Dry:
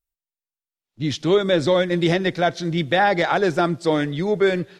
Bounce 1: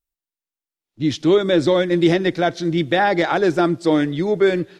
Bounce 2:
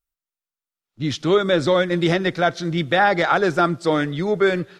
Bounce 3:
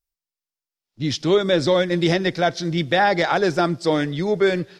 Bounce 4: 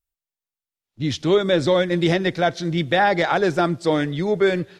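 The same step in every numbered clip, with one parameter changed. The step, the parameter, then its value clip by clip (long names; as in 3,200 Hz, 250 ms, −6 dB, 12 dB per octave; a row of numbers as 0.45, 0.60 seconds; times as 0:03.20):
parametric band, centre frequency: 320, 1,300, 5,100, 86 Hertz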